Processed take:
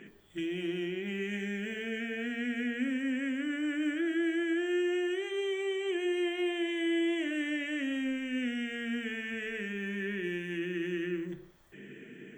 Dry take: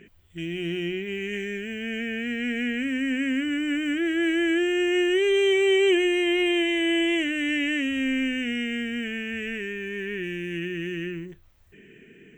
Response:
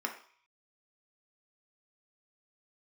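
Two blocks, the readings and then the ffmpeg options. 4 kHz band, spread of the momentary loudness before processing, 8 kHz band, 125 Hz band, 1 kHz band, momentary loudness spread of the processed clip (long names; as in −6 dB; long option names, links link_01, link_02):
−11.0 dB, 11 LU, −10.0 dB, can't be measured, −7.0 dB, 6 LU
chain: -filter_complex "[0:a]acompressor=threshold=-34dB:ratio=6,asplit=2[link_01][link_02];[1:a]atrim=start_sample=2205,asetrate=27783,aresample=44100[link_03];[link_02][link_03]afir=irnorm=-1:irlink=0,volume=-2dB[link_04];[link_01][link_04]amix=inputs=2:normalize=0,volume=-4dB"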